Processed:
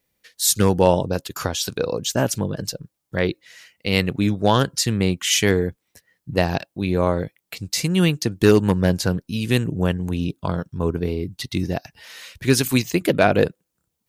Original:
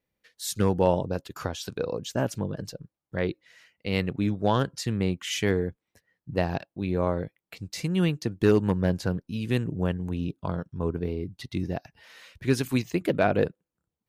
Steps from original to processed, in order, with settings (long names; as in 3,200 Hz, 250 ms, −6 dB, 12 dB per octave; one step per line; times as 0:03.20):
high-shelf EQ 3,500 Hz +10.5 dB
level +6 dB